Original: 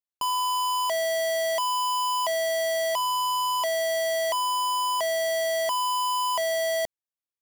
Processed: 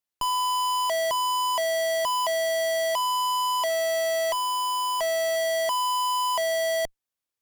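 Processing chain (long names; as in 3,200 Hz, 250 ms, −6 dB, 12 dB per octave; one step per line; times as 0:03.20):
0:01.11–0:02.05: reverse
0:03.69–0:05.36: comb filter 7.5 ms, depth 38%
tube saturation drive 32 dB, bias 0.5
level +7.5 dB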